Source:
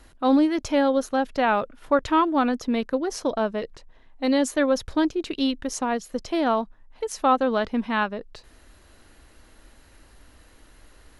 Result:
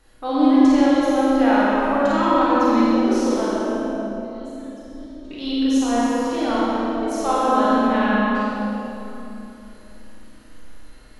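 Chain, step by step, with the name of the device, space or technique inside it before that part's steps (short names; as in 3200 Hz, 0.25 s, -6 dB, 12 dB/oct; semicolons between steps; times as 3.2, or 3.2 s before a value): 3.47–5.31 passive tone stack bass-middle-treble 10-0-1; tunnel (flutter echo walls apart 9 m, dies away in 0.61 s; reverb RT60 3.2 s, pre-delay 3 ms, DRR -4 dB); Schroeder reverb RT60 1.8 s, combs from 30 ms, DRR -2 dB; gain -7 dB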